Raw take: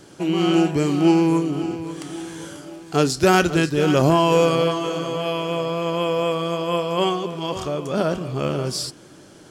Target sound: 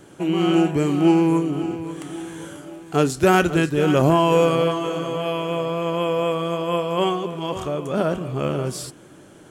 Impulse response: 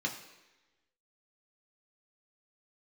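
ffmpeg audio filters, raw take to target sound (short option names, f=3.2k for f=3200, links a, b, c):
-af "equalizer=f=4.9k:t=o:w=0.66:g=-11"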